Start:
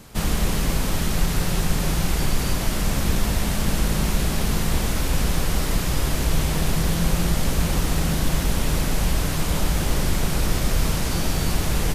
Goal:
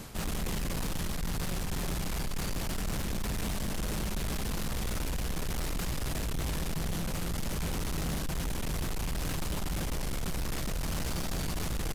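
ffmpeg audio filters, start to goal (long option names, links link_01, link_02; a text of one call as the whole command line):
ffmpeg -i in.wav -af "aecho=1:1:86:0.224,areverse,acompressor=threshold=-27dB:ratio=6,areverse,asoftclip=type=tanh:threshold=-33dB,volume=4dB" out.wav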